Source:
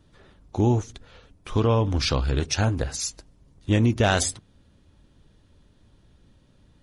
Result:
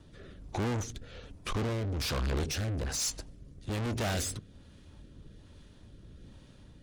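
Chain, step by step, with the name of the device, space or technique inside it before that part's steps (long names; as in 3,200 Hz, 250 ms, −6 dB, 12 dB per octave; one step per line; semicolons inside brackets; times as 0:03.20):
overdriven rotary cabinet (tube saturation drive 36 dB, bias 0.35; rotating-speaker cabinet horn 1.2 Hz)
level +7.5 dB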